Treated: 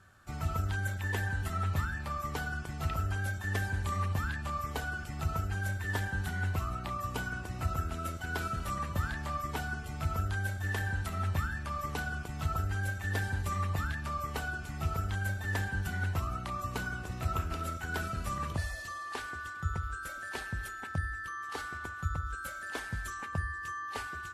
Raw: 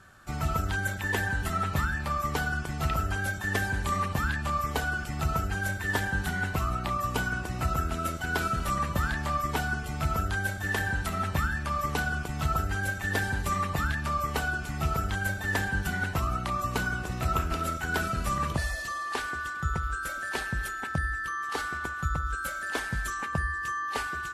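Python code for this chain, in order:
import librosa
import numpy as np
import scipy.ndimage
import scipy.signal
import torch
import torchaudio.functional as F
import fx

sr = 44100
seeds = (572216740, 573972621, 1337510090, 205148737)

y = fx.peak_eq(x, sr, hz=92.0, db=10.0, octaves=0.3)
y = F.gain(torch.from_numpy(y), -7.0).numpy()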